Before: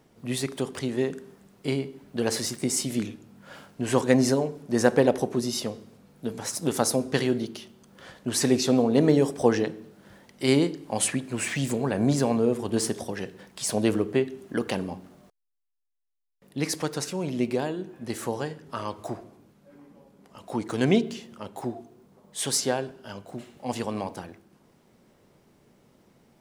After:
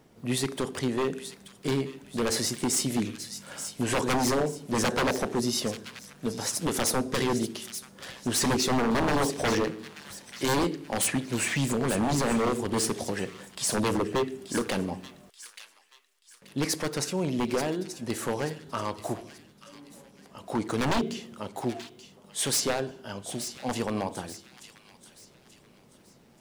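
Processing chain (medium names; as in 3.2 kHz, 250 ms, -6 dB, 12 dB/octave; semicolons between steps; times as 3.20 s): wavefolder -21 dBFS; feedback echo behind a high-pass 882 ms, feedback 37%, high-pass 2.3 kHz, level -9.5 dB; trim +1.5 dB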